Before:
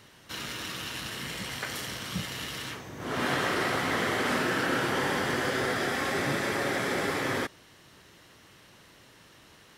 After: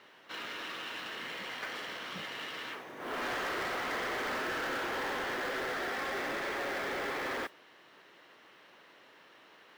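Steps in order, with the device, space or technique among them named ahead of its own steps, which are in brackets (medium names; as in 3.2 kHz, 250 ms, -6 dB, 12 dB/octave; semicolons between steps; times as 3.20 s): carbon microphone (band-pass 380–3000 Hz; saturation -32 dBFS, distortion -10 dB; modulation noise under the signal 22 dB)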